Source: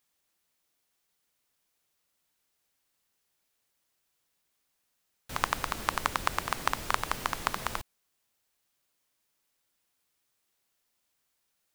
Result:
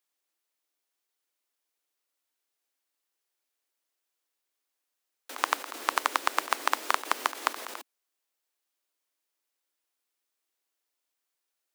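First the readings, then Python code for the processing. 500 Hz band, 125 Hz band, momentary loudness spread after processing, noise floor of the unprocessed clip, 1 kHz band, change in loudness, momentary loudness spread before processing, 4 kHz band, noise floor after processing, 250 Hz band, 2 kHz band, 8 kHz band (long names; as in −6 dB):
+1.5 dB, below −30 dB, 12 LU, −78 dBFS, +2.0 dB, +2.5 dB, 6 LU, +2.0 dB, −84 dBFS, −2.5 dB, +2.0 dB, +1.5 dB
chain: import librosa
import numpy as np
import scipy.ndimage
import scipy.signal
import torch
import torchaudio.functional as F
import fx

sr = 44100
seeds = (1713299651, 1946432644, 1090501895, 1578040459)

y = fx.level_steps(x, sr, step_db=15)
y = scipy.signal.sosfilt(scipy.signal.butter(8, 270.0, 'highpass', fs=sr, output='sos'), y)
y = y * 10.0 ** (6.0 / 20.0)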